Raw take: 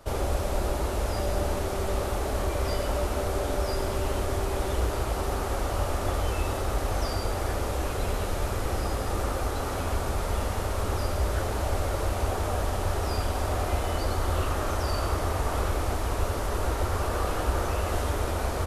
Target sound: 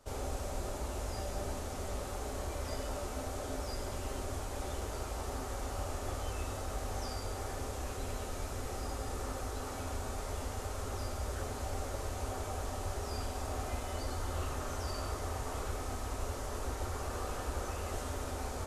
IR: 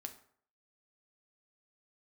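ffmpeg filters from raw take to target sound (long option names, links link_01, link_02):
-filter_complex "[0:a]equalizer=frequency=7000:width_type=o:width=0.88:gain=7[link_01];[1:a]atrim=start_sample=2205[link_02];[link_01][link_02]afir=irnorm=-1:irlink=0,volume=-7dB"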